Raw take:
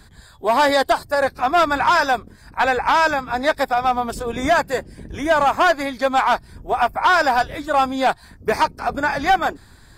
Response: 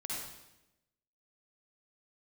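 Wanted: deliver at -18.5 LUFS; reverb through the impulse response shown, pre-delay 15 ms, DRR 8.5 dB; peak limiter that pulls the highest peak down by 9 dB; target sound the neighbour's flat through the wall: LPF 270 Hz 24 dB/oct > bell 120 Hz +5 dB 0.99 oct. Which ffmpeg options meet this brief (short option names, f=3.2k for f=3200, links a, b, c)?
-filter_complex "[0:a]alimiter=limit=-18.5dB:level=0:latency=1,asplit=2[a][b];[1:a]atrim=start_sample=2205,adelay=15[c];[b][c]afir=irnorm=-1:irlink=0,volume=-10dB[d];[a][d]amix=inputs=2:normalize=0,lowpass=f=270:w=0.5412,lowpass=f=270:w=1.3066,equalizer=f=120:t=o:w=0.99:g=5,volume=18.5dB"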